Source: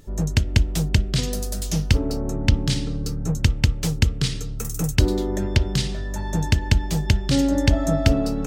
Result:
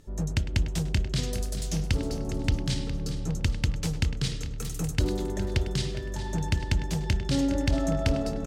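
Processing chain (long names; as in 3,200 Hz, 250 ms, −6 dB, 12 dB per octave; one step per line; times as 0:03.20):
low-pass filter 12,000 Hz 12 dB per octave
on a send: tape delay 102 ms, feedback 58%, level −11 dB, low-pass 2,800 Hz
on the sum: soft clipping −9 dBFS, distortion −18 dB
repeating echo 411 ms, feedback 48%, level −12 dB
level −6 dB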